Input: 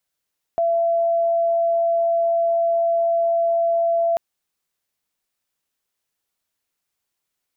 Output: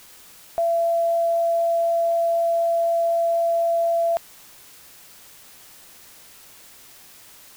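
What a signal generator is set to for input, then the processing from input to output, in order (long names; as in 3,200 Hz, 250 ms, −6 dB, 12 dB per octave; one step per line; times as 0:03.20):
tone sine 674 Hz −16 dBFS 3.59 s
parametric band 280 Hz −8.5 dB 2.2 octaves
in parallel at −11 dB: bit-depth reduction 6 bits, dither triangular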